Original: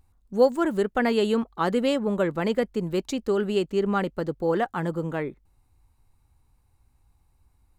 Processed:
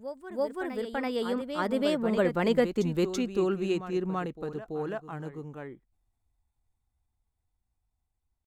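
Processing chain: Doppler pass-by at 2.46, 32 m/s, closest 20 m; tempo 0.92×; reverse echo 0.333 s -9 dB

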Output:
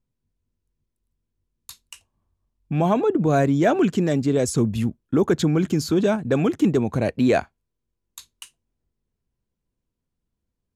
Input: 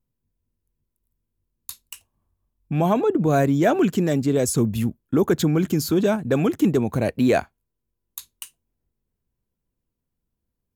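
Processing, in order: LPF 8100 Hz 12 dB/oct

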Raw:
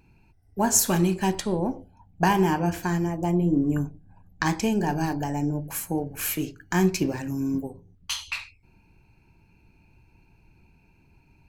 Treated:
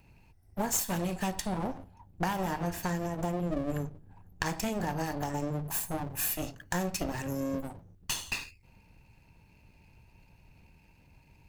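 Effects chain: minimum comb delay 1.1 ms; high shelf 7300 Hz +6 dB; compressor 4:1, threshold -29 dBFS, peak gain reduction 13 dB

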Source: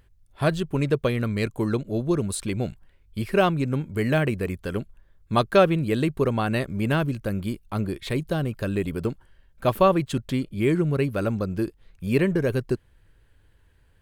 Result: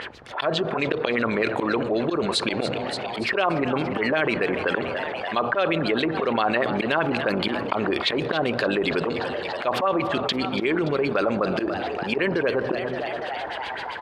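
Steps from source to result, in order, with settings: octaver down 2 oct, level -5 dB; AGC gain up to 8.5 dB; LFO low-pass sine 7.7 Hz 810–4500 Hz; on a send at -21 dB: bell 3200 Hz -8 dB 0.77 oct + reverb RT60 1.3 s, pre-delay 3 ms; on the sum: auto swell 0.151 s; limiter -12.5 dBFS, peak gain reduction 11.5 dB; HPF 440 Hz 12 dB/oct; frequency-shifting echo 0.287 s, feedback 58%, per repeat +93 Hz, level -19 dB; fast leveller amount 70%

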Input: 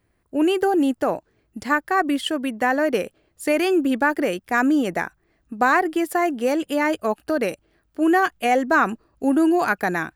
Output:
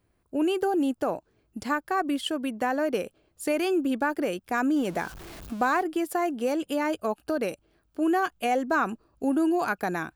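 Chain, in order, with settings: 4.76–5.83 zero-crossing step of -34 dBFS; bell 1900 Hz -7 dB 0.34 oct; in parallel at 0 dB: compressor, threshold -26 dBFS, peak gain reduction 12 dB; on the sum: gain -8.5 dB

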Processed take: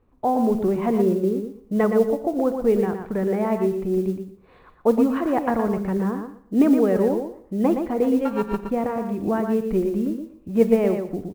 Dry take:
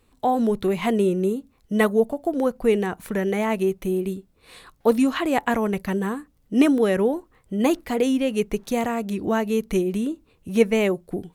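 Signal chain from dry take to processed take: 8.25–8.7 sample sorter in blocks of 32 samples; LPF 1200 Hz 12 dB/oct; feedback echo 0.118 s, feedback 17%, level -6.5 dB; Schroeder reverb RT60 0.73 s, combs from 31 ms, DRR 14 dB; modulation noise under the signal 31 dB

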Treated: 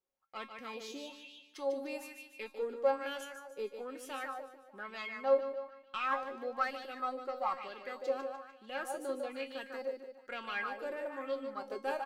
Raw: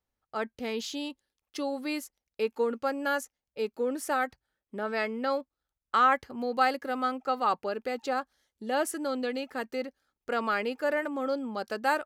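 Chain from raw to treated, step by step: one diode to ground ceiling -22.5 dBFS; comb 5.5 ms, depth 30%; in parallel at -1 dB: vocal rider 0.5 s; on the sum: low shelf 170 Hz -9 dB; resonator 270 Hz, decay 0.28 s, harmonics all, mix 80%; feedback echo 0.149 s, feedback 45%, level -7 dB; LFO bell 1.1 Hz 370–3300 Hz +13 dB; gain -8 dB

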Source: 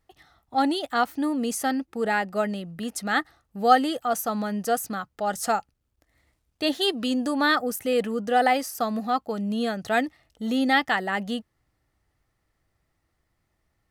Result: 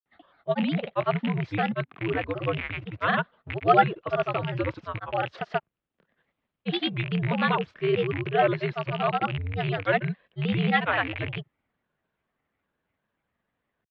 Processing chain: rattling part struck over -38 dBFS, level -19 dBFS; grains 0.1 s, grains 20/s, pitch spread up and down by 3 st; mistuned SSB -92 Hz 180–3500 Hz

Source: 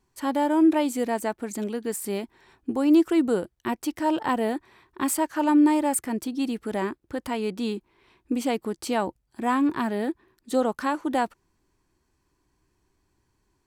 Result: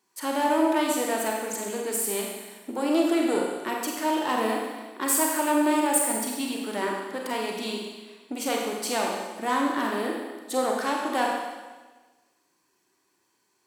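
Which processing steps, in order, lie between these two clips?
one diode to ground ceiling -21.5 dBFS; HPF 260 Hz 12 dB/oct; tilt +1.5 dB/oct; Schroeder reverb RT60 1.3 s, combs from 32 ms, DRR -1 dB

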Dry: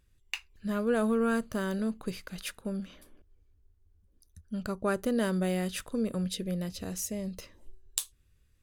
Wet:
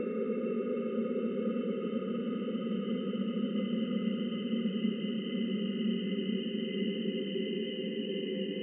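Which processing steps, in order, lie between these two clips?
sine-wave speech; transient shaper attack +2 dB, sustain +7 dB; Paulstretch 33×, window 0.50 s, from 6.13; gain -1.5 dB

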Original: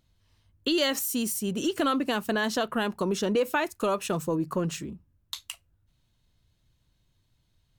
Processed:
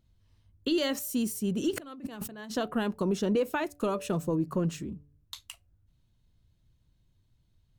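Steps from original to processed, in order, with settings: low shelf 440 Hz +9 dB; 1.73–2.51 negative-ratio compressor -35 dBFS, ratio -1; de-hum 145.2 Hz, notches 5; gain -6.5 dB

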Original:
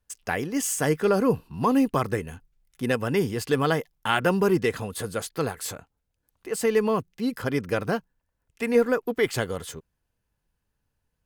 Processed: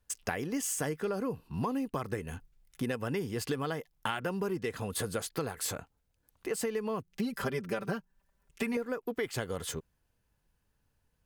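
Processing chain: 7.12–8.77 comb 5.1 ms, depth 90%; compressor 12:1, threshold -32 dBFS, peak gain reduction 17.5 dB; gain +2 dB

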